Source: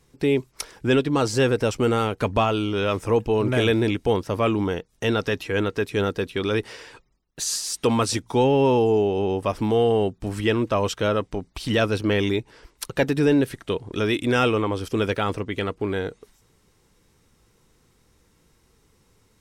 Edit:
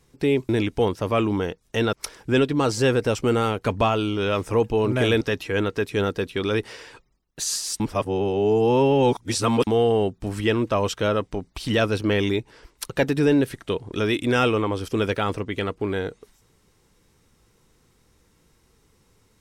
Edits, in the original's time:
3.77–5.21 s: move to 0.49 s
7.80–9.67 s: reverse

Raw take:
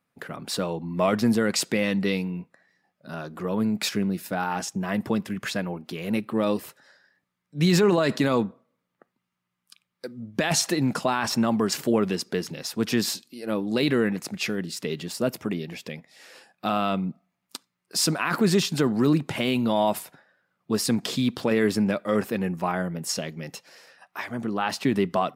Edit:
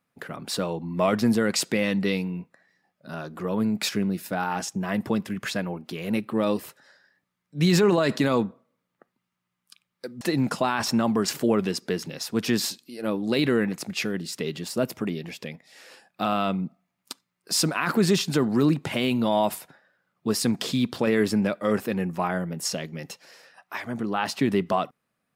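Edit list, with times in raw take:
10.21–10.65 s: delete

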